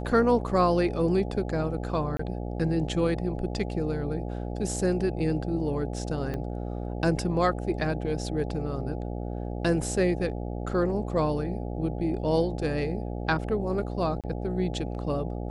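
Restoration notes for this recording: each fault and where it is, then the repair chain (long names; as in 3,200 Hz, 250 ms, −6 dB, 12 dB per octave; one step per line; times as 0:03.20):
mains buzz 60 Hz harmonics 14 −33 dBFS
0:02.17–0:02.19: drop-out 24 ms
0:06.34: click −21 dBFS
0:14.21–0:14.24: drop-out 27 ms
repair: click removal
hum removal 60 Hz, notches 14
repair the gap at 0:02.17, 24 ms
repair the gap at 0:14.21, 27 ms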